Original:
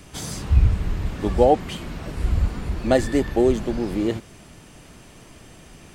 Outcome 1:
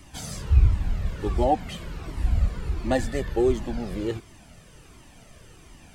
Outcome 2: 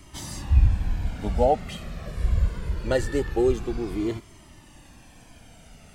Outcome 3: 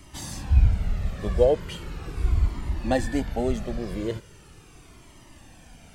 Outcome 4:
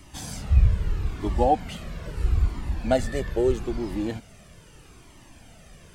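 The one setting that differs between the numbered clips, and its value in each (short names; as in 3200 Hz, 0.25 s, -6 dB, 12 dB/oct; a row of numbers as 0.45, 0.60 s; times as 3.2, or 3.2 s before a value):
cascading flanger, rate: 1.4, 0.23, 0.39, 0.78 Hz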